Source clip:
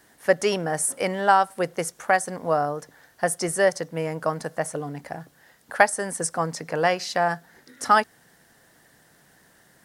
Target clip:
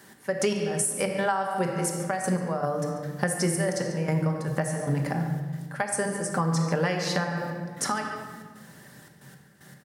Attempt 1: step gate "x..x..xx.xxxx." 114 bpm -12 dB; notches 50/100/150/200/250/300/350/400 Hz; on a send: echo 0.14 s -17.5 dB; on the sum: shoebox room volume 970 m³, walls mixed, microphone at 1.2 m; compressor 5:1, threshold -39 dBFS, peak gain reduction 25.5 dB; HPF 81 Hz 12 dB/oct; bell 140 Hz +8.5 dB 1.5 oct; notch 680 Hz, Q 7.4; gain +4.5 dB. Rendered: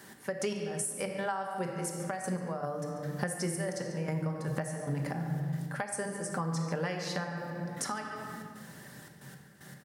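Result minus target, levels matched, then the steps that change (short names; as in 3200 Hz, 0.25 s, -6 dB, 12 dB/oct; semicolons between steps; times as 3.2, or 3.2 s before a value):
compressor: peak gain reduction +8 dB
change: compressor 5:1, threshold -29 dBFS, peak gain reduction 17.5 dB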